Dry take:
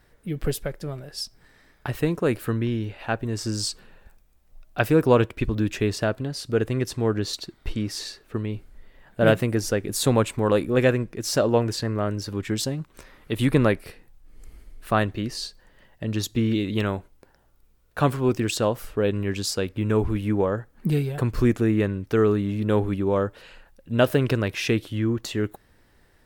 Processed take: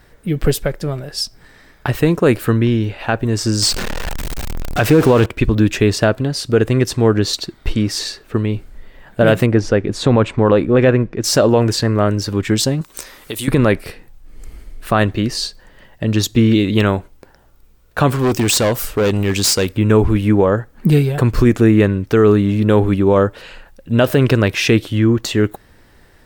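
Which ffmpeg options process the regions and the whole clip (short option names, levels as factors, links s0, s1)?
-filter_complex "[0:a]asettb=1/sr,asplit=3[s0][s1][s2];[s0]atrim=end=3.624[s3];[s1]atrim=start=3.62:end=5.26,asetpts=PTS-STARTPTS,afade=t=in:d=0.004:c=qsin,afade=t=out:st=1.636:d=0.004:c=qsin,aeval=exprs='val(0)+0.5*0.0473*sgn(val(0))':c=same,highshelf=f=11000:g=-6.5[s4];[s2]atrim=start=5.256[s5];[s3][s4]acrossfade=d=0.004:c1=hsin:c2=qsin[s6];[s6][s5]acrossfade=d=0.004:c1=qsin:c2=hsin,asettb=1/sr,asplit=3[s7][s8][s9];[s7]atrim=end=9.464[s10];[s8]atrim=start=9.46:end=11.24,asetpts=PTS-STARTPTS,afade=t=in:d=0.004:c=qsin,afade=t=out:st=1.776:d=0.004:c=qsin,lowpass=5900,highshelf=f=3500:g=-10.5[s11];[s9]atrim=start=11.236[s12];[s10][s11]acrossfade=d=0.004:c1=hsin:c2=qsin[s13];[s13][s12]acrossfade=d=0.004:c1=qsin:c2=hsin,asettb=1/sr,asplit=3[s14][s15][s16];[s14]atrim=end=12.814[s17];[s15]atrim=start=12.81:end=13.48,asetpts=PTS-STARTPTS,afade=t=in:d=0.004:c=qsin,afade=t=out:st=0.666:d=0.004:c=qsin,bass=f=250:g=-8,treble=f=4000:g=14,acompressor=threshold=0.0251:ratio=5:attack=3.2:release=140:knee=1:detection=peak[s18];[s16]atrim=start=13.476[s19];[s17][s18]acrossfade=d=0.004:c1=hsin:c2=qsin[s20];[s20][s19]acrossfade=d=0.004:c1=qsin:c2=hsin,asettb=1/sr,asplit=3[s21][s22][s23];[s21]atrim=end=18.194[s24];[s22]atrim=start=18.19:end=19.77,asetpts=PTS-STARTPTS,afade=t=in:d=0.004:c=qsin,afade=t=out:st=1.576:d=0.004:c=qsin,highshelf=f=4400:g=11,volume=12.6,asoftclip=hard,volume=0.0794[s25];[s23]atrim=start=19.766[s26];[s24][s25]acrossfade=d=0.004:c1=hsin:c2=qsin[s27];[s27][s26]acrossfade=d=0.004:c1=qsin:c2=hsin,equalizer=f=11000:w=7.8:g=-10,alimiter=level_in=4.22:limit=0.891:release=50:level=0:latency=1,volume=0.794"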